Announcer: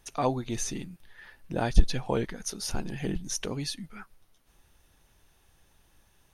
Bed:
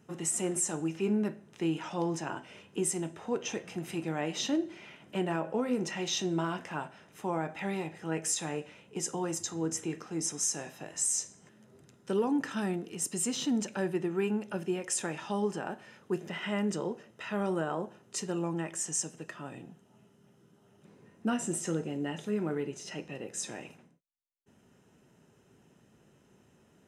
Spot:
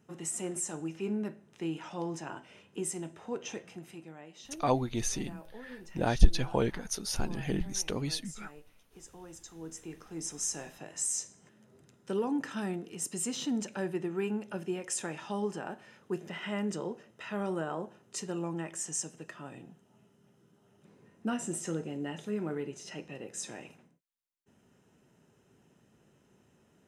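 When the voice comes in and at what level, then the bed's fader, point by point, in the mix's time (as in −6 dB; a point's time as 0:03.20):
4.45 s, −0.5 dB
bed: 0:03.59 −4.5 dB
0:04.26 −17.5 dB
0:09.06 −17.5 dB
0:10.50 −2.5 dB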